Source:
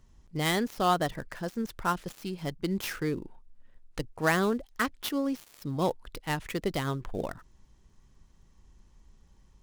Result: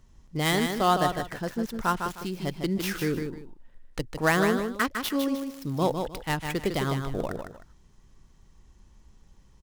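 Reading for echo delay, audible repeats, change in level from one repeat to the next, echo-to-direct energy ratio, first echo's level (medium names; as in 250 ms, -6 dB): 154 ms, 2, -11.5 dB, -5.5 dB, -6.0 dB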